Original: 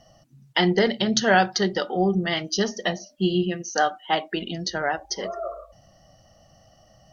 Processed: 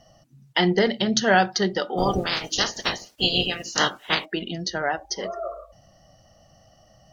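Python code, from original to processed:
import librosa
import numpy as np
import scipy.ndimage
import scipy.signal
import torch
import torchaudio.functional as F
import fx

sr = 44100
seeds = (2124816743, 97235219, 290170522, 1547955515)

y = fx.spec_clip(x, sr, under_db=30, at=(1.97, 4.24), fade=0.02)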